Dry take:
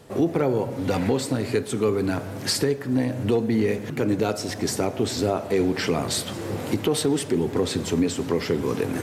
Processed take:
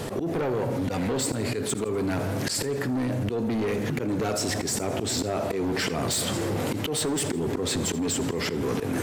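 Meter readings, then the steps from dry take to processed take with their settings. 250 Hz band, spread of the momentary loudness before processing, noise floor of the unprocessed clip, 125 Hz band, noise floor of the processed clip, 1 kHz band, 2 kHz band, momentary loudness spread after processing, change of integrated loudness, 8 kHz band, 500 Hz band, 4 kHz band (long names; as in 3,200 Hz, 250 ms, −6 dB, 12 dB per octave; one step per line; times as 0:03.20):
−3.5 dB, 4 LU, −34 dBFS, −2.0 dB, −31 dBFS, −1.5 dB, −0.5 dB, 2 LU, −2.5 dB, +2.5 dB, −4.5 dB, −0.5 dB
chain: dynamic equaliser 7,600 Hz, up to +7 dB, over −50 dBFS, Q 5
volume swells 162 ms
soft clipping −23.5 dBFS, distortion −10 dB
feedback echo with a high-pass in the loop 82 ms, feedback 57%, level −21 dB
envelope flattener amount 70%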